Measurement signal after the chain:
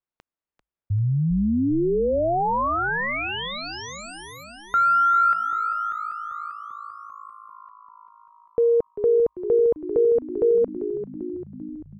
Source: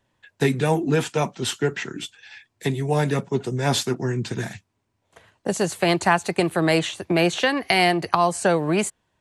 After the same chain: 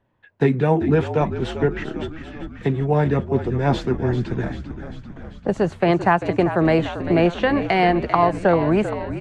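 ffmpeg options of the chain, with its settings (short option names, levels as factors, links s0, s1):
-filter_complex "[0:a]lowpass=f=1900:p=1,aemphasis=mode=reproduction:type=75fm,asplit=2[s0][s1];[s1]asplit=8[s2][s3][s4][s5][s6][s7][s8][s9];[s2]adelay=393,afreqshift=-54,volume=0.282[s10];[s3]adelay=786,afreqshift=-108,volume=0.184[s11];[s4]adelay=1179,afreqshift=-162,volume=0.119[s12];[s5]adelay=1572,afreqshift=-216,volume=0.0776[s13];[s6]adelay=1965,afreqshift=-270,volume=0.0501[s14];[s7]adelay=2358,afreqshift=-324,volume=0.0327[s15];[s8]adelay=2751,afreqshift=-378,volume=0.0211[s16];[s9]adelay=3144,afreqshift=-432,volume=0.0138[s17];[s10][s11][s12][s13][s14][s15][s16][s17]amix=inputs=8:normalize=0[s18];[s0][s18]amix=inputs=2:normalize=0,volume=1.33"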